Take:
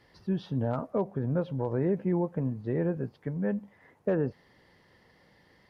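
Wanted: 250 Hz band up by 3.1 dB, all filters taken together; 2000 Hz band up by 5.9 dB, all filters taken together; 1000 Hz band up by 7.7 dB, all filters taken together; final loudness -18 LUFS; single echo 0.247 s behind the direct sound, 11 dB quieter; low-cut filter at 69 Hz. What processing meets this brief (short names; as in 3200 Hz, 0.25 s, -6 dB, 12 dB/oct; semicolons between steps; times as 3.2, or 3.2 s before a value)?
HPF 69 Hz; bell 250 Hz +4 dB; bell 1000 Hz +8.5 dB; bell 2000 Hz +4 dB; echo 0.247 s -11 dB; gain +10 dB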